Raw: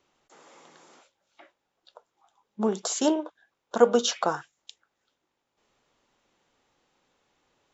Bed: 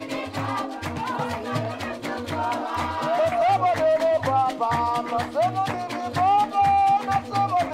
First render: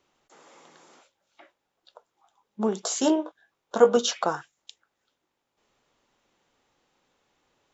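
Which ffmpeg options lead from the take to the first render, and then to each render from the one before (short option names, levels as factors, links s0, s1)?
-filter_complex "[0:a]asettb=1/sr,asplit=3[s0][s1][s2];[s0]atrim=end=2.834[s3];[s1]atrim=start=2.83:end=3.97,asetpts=PTS-STARTPTS,afade=t=in:d=0.004:c=qsin,afade=t=out:st=1.136:d=0.004:c=qsin,asplit=2[s4][s5];[s5]adelay=19,volume=0.422[s6];[s4][s6]amix=inputs=2:normalize=0,atrim=end_sample=50274[s7];[s2]atrim=start=3.966[s8];[s3][s7]acrossfade=d=0.004:c1=hsin:c2=qsin[s9];[s9][s8]acrossfade=d=0.004:c1=qsin:c2=hsin"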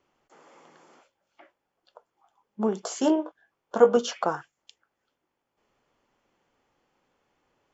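-af "highshelf=f=3900:g=-9.5,bandreject=f=3800:w=8.4"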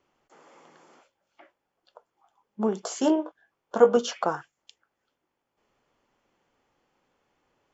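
-af anull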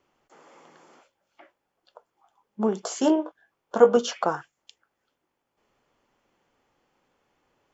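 -af "volume=1.19"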